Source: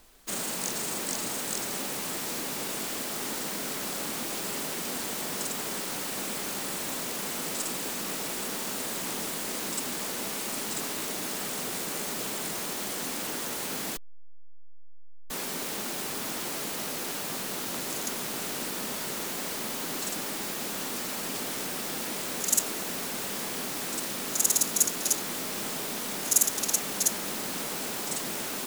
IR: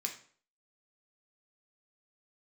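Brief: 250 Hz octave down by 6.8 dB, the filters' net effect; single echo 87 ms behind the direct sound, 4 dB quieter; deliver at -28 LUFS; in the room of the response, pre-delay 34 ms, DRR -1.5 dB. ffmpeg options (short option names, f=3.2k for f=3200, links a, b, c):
-filter_complex "[0:a]equalizer=f=250:t=o:g=-9,aecho=1:1:87:0.631,asplit=2[a][b];[1:a]atrim=start_sample=2205,adelay=34[c];[b][c]afir=irnorm=-1:irlink=0,volume=1dB[d];[a][d]amix=inputs=2:normalize=0,volume=-3.5dB"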